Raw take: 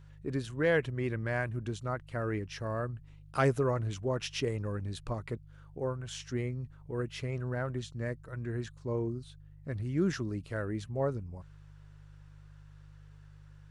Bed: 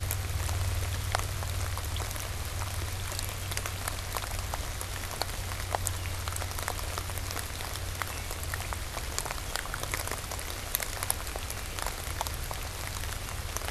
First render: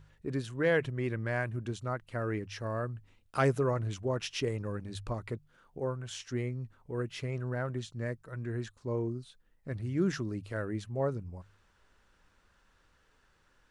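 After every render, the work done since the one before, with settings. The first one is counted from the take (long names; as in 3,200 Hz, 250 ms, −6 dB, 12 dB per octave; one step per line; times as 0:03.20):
hum removal 50 Hz, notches 3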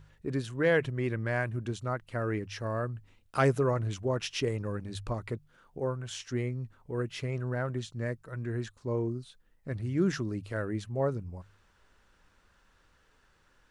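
level +2 dB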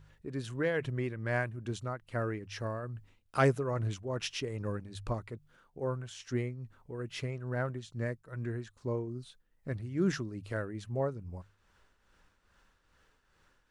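shaped tremolo triangle 2.4 Hz, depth 65%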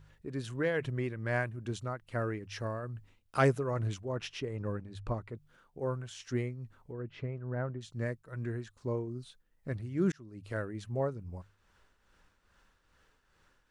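0:04.12–0:05.35: high-shelf EQ 3,800 Hz −11 dB
0:06.92–0:07.81: head-to-tape spacing loss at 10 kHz 36 dB
0:10.12–0:10.59: fade in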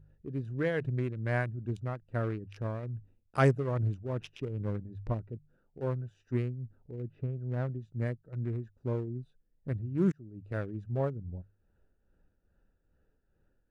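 adaptive Wiener filter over 41 samples
dynamic equaliser 130 Hz, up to +4 dB, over −47 dBFS, Q 0.71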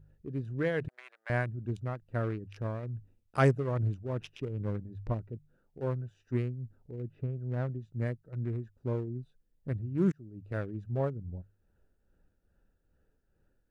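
0:00.88–0:01.30: Chebyshev high-pass filter 710 Hz, order 4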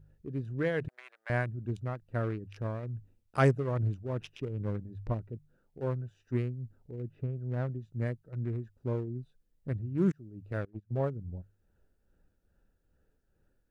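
0:10.65–0:11.08: noise gate −37 dBFS, range −22 dB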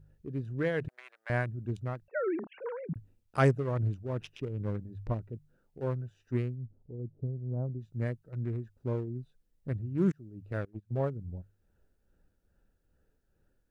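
0:02.08–0:02.96: three sine waves on the formant tracks
0:06.55–0:07.81: Gaussian smoothing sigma 11 samples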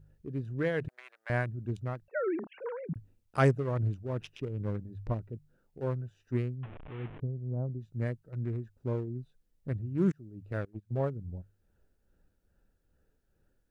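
0:06.63–0:07.20: linear delta modulator 16 kbit/s, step −40 dBFS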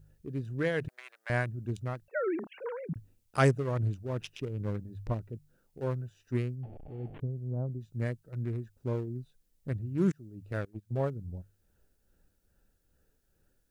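0:06.53–0:07.15: gain on a spectral selection 870–4,200 Hz −20 dB
high-shelf EQ 3,600 Hz +9.5 dB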